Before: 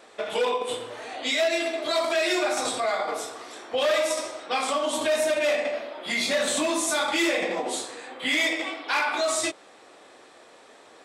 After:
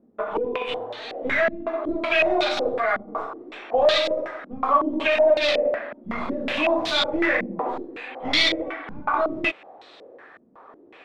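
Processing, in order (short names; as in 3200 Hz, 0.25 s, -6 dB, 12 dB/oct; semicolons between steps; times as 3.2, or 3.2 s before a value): tracing distortion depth 0.2 ms; stepped low-pass 5.4 Hz 220–3900 Hz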